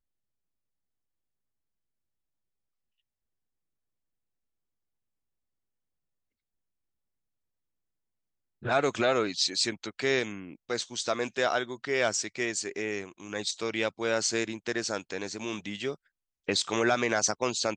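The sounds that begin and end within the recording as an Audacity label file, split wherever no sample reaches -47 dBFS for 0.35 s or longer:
8.620000	15.950000	sound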